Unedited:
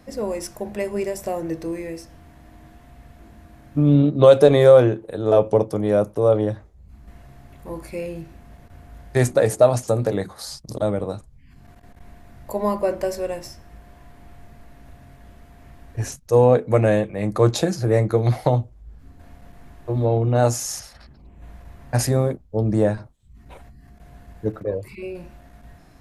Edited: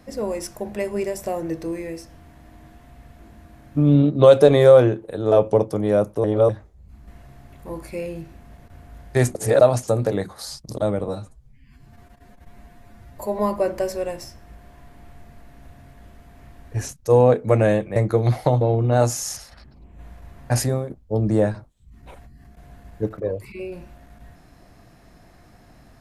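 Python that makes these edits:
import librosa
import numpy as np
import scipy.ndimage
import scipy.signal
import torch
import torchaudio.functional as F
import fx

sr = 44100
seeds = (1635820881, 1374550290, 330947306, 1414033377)

y = fx.edit(x, sr, fx.reverse_span(start_s=6.24, length_s=0.25),
    fx.reverse_span(start_s=9.35, length_s=0.26),
    fx.stretch_span(start_s=11.08, length_s=1.54, factor=1.5),
    fx.cut(start_s=17.19, length_s=0.77),
    fx.cut(start_s=18.61, length_s=1.43),
    fx.fade_out_to(start_s=22.03, length_s=0.3, floor_db=-12.0), tone=tone)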